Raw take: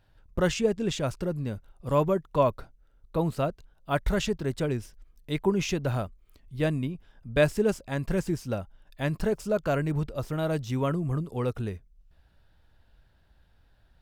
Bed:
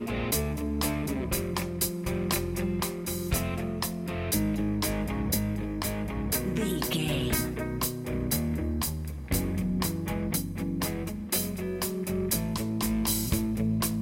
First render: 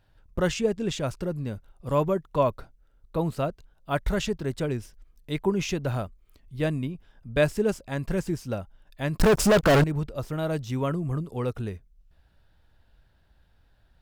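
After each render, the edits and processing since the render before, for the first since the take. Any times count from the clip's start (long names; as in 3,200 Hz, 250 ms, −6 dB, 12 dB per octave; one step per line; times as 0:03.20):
0:09.19–0:09.84: leveller curve on the samples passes 5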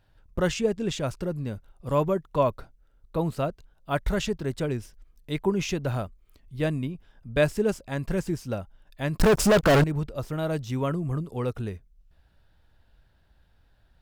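no processing that can be heard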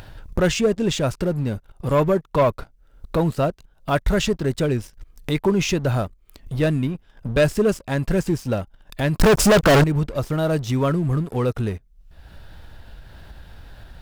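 leveller curve on the samples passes 2
upward compression, threshold −20 dBFS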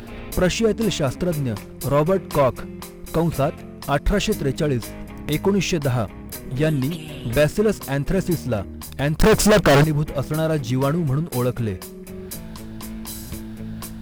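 mix in bed −5.5 dB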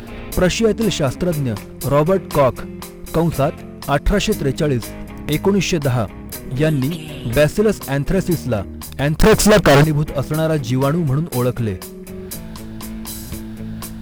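level +3.5 dB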